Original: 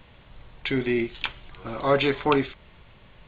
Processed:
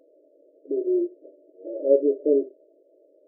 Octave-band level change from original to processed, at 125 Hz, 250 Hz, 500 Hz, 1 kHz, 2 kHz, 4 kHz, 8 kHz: below −35 dB, 0.0 dB, +4.0 dB, below −30 dB, below −40 dB, below −40 dB, can't be measured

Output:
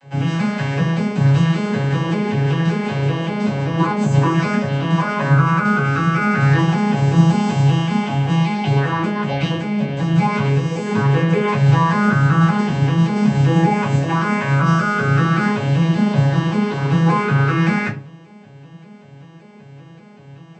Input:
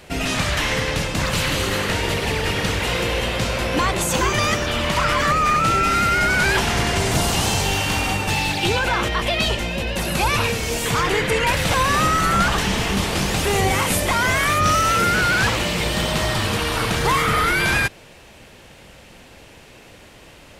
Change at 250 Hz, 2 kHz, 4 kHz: +9.5, −3.0, −9.5 decibels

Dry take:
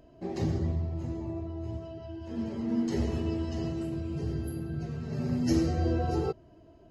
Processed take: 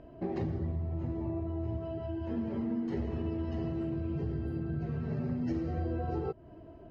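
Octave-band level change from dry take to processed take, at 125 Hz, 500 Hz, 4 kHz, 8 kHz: −2.5 dB, −3.0 dB, below −10 dB, below −20 dB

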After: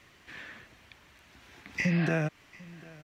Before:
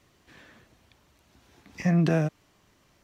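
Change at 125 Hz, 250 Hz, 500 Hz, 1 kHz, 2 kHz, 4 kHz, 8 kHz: −5.0 dB, −5.0 dB, −4.5 dB, −3.0 dB, +5.0 dB, +1.5 dB, can't be measured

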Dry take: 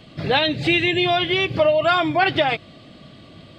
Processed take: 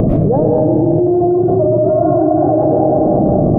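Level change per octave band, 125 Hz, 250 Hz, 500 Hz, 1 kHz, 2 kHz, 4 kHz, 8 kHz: +15.0 dB, +13.5 dB, +10.0 dB, +4.0 dB, below −25 dB, below −40 dB, can't be measured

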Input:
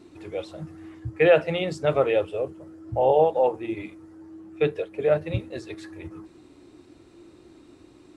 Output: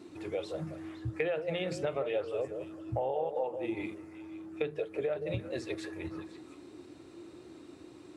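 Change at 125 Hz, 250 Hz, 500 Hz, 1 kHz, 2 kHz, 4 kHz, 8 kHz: −8.0 dB, −6.0 dB, −11.0 dB, −12.5 dB, −10.0 dB, −8.0 dB, can't be measured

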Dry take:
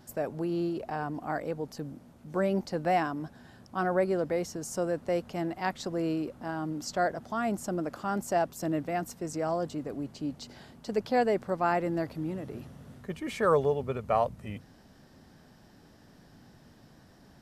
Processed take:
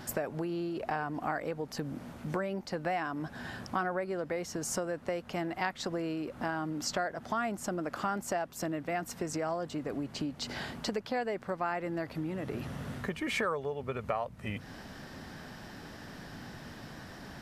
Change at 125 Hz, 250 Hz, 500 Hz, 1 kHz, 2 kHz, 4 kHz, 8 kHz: −3.0, −3.5, −5.5, −4.0, +1.0, +3.5, +2.5 decibels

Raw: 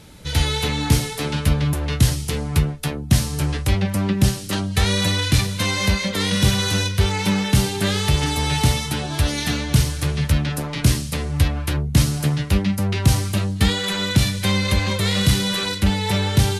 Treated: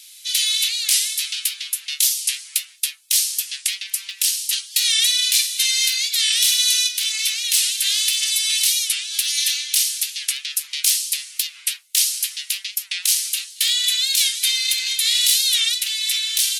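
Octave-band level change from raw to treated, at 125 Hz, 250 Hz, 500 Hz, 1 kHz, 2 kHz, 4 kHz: below −40 dB, below −40 dB, below −40 dB, below −25 dB, −1.5 dB, +7.0 dB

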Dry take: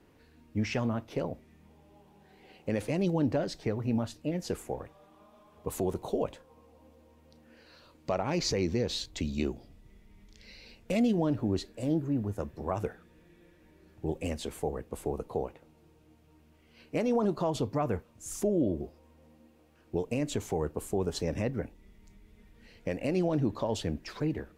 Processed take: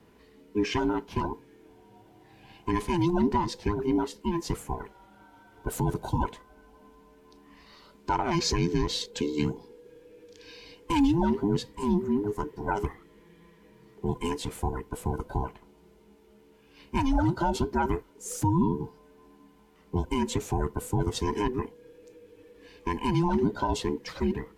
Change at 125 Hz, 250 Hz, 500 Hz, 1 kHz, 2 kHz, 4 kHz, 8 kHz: +3.5, +3.5, 0.0, +9.0, +4.5, +4.0, +3.5 decibels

